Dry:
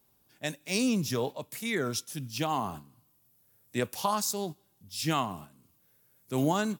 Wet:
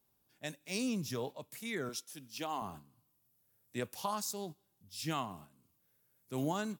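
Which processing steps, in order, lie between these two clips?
1.89–2.62 HPF 270 Hz 12 dB/oct; gain -8 dB

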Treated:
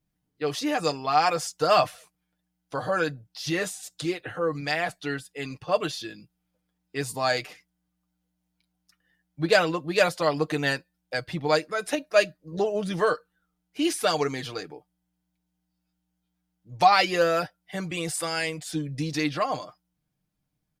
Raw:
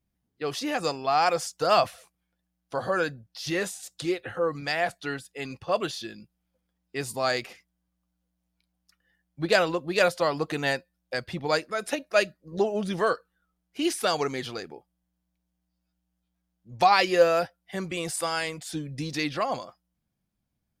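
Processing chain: comb 6.6 ms, depth 55%

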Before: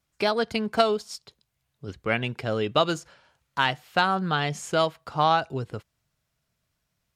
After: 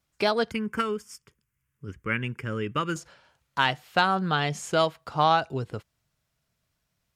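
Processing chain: 0.51–2.96 fixed phaser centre 1700 Hz, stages 4

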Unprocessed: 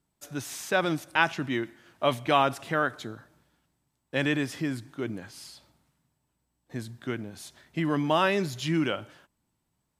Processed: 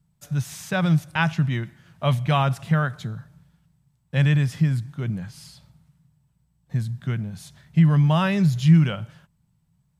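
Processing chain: resonant low shelf 220 Hz +10.5 dB, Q 3

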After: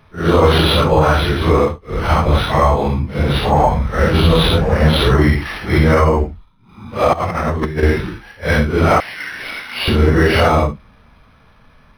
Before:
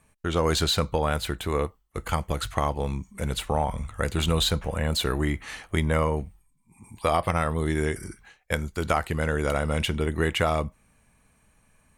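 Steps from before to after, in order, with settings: phase scrambler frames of 0.2 s; 7.13–7.83 negative-ratio compressor -31 dBFS, ratio -0.5; 9–9.88 steep high-pass 1900 Hz 36 dB/oct; maximiser +15.5 dB; decimation joined by straight lines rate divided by 6×; gain -1 dB

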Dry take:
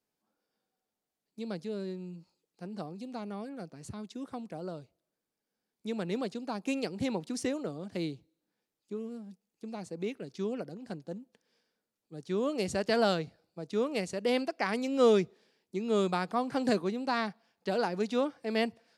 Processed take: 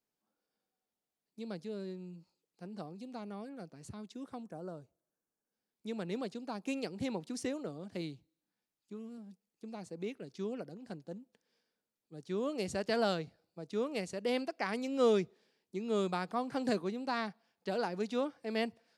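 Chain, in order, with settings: 4.43–5.52 spectral gain 1800–5400 Hz -9 dB; 8.01–9.18 bell 440 Hz -6 dB 0.83 oct; gain -4.5 dB

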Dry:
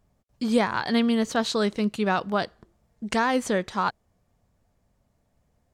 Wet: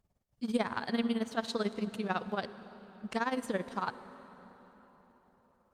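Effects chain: 0.83–3.04 HPF 68 Hz 24 dB/oct; tremolo 18 Hz, depth 83%; reverb RT60 4.5 s, pre-delay 47 ms, DRR 12.5 dB; gain -6 dB; Opus 48 kbps 48000 Hz

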